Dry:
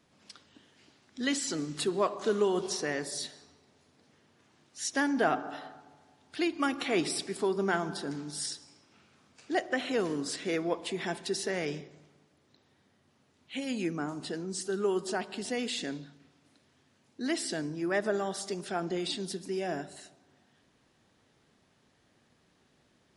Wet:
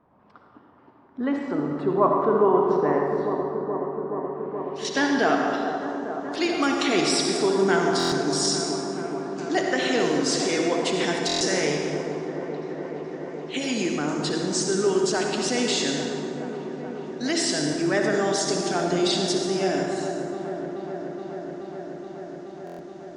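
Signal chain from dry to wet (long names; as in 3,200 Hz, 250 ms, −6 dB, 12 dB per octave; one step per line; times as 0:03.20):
low-pass filter sweep 1,000 Hz → 6,500 Hz, 0:04.10–0:05.30
hum removal 163.6 Hz, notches 30
in parallel at +1.5 dB: output level in coarse steps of 20 dB
on the sum: delay with a low-pass on its return 425 ms, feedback 84%, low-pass 1,200 Hz, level −9 dB
on a send at −1.5 dB: convolution reverb RT60 1.9 s, pre-delay 53 ms
on the sum: buffer that repeats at 0:07.98/0:11.27/0:22.65, samples 1,024, times 5
level +2.5 dB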